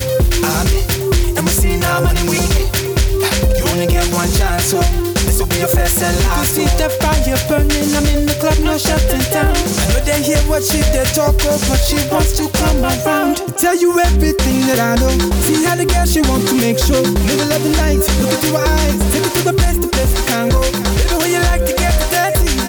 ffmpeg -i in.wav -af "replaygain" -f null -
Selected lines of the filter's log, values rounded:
track_gain = -2.1 dB
track_peak = 0.408